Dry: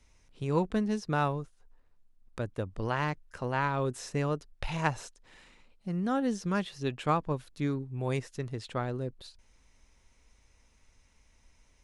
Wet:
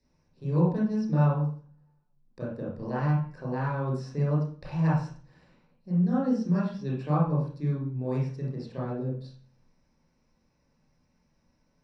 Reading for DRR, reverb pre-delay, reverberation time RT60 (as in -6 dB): -7.0 dB, 24 ms, 0.45 s